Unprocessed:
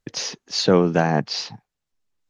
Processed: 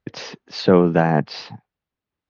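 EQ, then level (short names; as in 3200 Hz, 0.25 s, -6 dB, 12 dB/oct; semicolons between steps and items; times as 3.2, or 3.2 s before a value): HPF 45 Hz; air absorption 260 m; +3.0 dB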